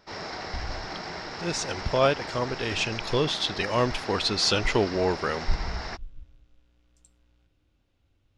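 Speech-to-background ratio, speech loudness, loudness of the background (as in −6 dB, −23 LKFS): 9.0 dB, −27.0 LKFS, −36.0 LKFS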